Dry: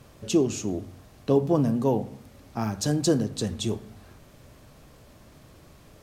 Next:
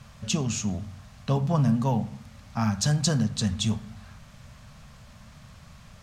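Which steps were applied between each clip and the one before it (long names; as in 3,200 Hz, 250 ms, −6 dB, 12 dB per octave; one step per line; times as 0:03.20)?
drawn EQ curve 220 Hz 0 dB, 320 Hz −23 dB, 600 Hz −7 dB, 1,200 Hz 0 dB, 6,900 Hz −1 dB, 13,000 Hz −11 dB
level +4.5 dB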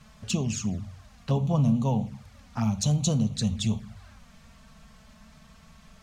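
flanger swept by the level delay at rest 5.7 ms, full sweep at −22.5 dBFS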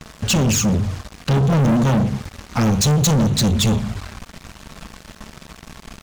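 leveller curve on the samples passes 5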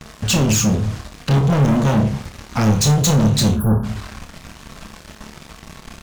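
time-frequency box erased 0:03.56–0:03.84, 1,700–10,000 Hz
flutter between parallel walls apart 4.8 metres, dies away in 0.24 s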